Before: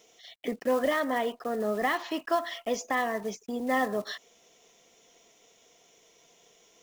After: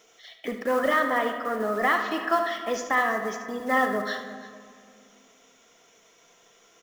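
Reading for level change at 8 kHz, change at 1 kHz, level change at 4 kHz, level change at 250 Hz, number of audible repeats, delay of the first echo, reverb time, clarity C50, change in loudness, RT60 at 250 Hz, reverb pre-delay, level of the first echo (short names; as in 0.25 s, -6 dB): +1.0 dB, +5.5 dB, +2.0 dB, +1.5 dB, 2, 73 ms, 2.2 s, 6.0 dB, +4.5 dB, 2.9 s, 3 ms, -10.5 dB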